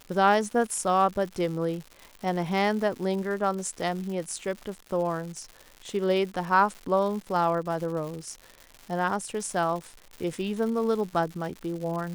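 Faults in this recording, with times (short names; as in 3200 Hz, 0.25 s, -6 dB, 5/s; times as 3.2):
crackle 220/s -35 dBFS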